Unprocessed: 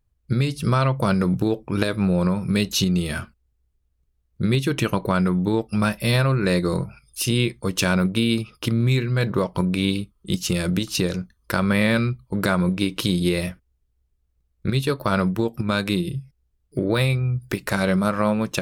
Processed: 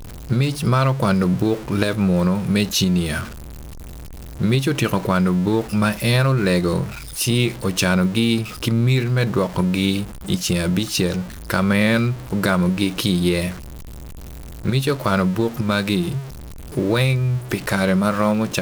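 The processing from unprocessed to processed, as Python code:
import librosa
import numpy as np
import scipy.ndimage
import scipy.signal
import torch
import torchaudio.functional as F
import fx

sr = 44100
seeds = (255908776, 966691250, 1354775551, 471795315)

y = x + 0.5 * 10.0 ** (-30.0 / 20.0) * np.sign(x)
y = y * librosa.db_to_amplitude(1.5)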